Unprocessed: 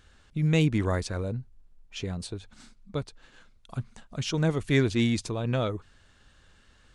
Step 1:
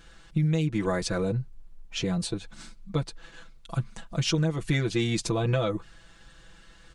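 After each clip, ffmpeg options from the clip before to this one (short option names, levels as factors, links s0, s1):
-af "aecho=1:1:6:0.98,acompressor=threshold=0.0562:ratio=12,volume=1.5"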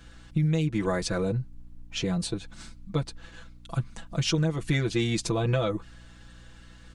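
-af "aeval=exprs='val(0)+0.00316*(sin(2*PI*60*n/s)+sin(2*PI*2*60*n/s)/2+sin(2*PI*3*60*n/s)/3+sin(2*PI*4*60*n/s)/4+sin(2*PI*5*60*n/s)/5)':c=same"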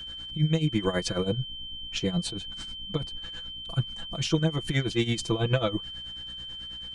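-af "tremolo=f=9.2:d=0.81,aeval=exprs='val(0)+0.01*sin(2*PI*3100*n/s)':c=same,volume=1.41"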